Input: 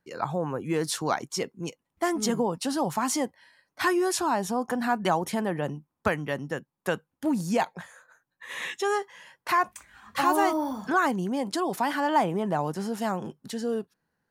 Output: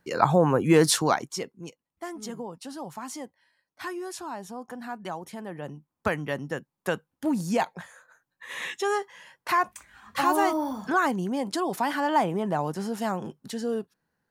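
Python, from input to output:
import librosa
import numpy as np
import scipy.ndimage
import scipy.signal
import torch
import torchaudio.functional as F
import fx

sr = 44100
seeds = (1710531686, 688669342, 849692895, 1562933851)

y = fx.gain(x, sr, db=fx.line((0.86, 9.0), (1.45, -4.0), (2.04, -10.5), (5.38, -10.5), (6.16, 0.0)))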